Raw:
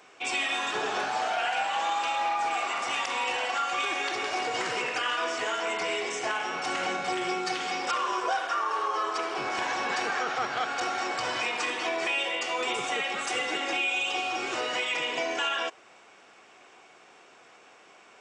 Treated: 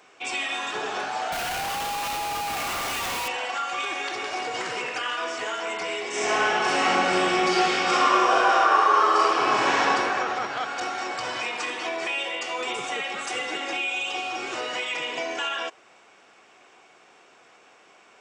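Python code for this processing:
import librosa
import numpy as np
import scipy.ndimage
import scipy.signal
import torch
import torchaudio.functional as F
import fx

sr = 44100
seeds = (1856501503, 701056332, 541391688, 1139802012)

y = fx.schmitt(x, sr, flips_db=-44.5, at=(1.32, 3.28))
y = fx.reverb_throw(y, sr, start_s=6.08, length_s=3.76, rt60_s=2.6, drr_db=-9.0)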